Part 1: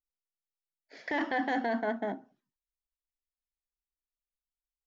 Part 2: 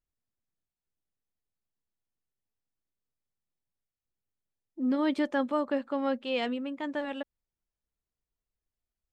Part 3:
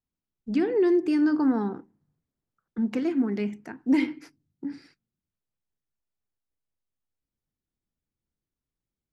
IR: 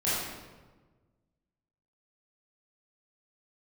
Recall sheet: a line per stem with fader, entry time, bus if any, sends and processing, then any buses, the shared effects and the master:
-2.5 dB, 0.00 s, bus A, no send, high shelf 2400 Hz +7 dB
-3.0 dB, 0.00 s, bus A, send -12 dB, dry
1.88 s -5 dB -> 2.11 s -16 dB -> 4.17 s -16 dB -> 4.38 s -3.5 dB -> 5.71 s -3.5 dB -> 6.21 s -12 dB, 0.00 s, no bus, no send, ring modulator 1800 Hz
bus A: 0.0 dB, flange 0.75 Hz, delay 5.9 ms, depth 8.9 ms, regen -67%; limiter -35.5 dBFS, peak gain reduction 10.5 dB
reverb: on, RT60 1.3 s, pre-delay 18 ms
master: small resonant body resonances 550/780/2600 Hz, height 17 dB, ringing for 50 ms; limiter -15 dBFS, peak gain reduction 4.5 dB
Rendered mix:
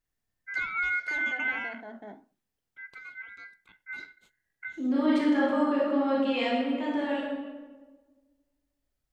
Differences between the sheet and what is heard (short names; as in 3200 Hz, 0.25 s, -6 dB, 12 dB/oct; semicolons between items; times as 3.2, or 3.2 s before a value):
stem 1: missing high shelf 2400 Hz +7 dB; stem 2 -3.0 dB -> +5.0 dB; master: missing small resonant body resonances 550/780/2600 Hz, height 17 dB, ringing for 50 ms